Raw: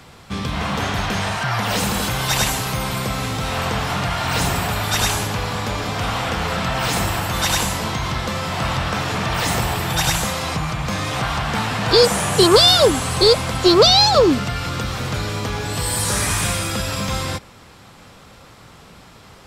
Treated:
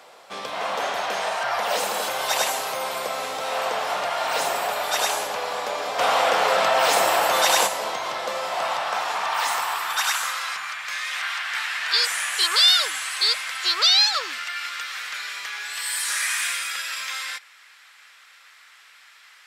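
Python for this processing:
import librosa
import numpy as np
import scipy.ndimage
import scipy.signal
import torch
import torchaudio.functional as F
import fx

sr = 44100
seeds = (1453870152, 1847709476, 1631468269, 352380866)

y = fx.filter_sweep_highpass(x, sr, from_hz=580.0, to_hz=1800.0, start_s=8.35, end_s=10.97, q=2.2)
y = fx.env_flatten(y, sr, amount_pct=50, at=(5.98, 7.66), fade=0.02)
y = F.gain(torch.from_numpy(y), -4.5).numpy()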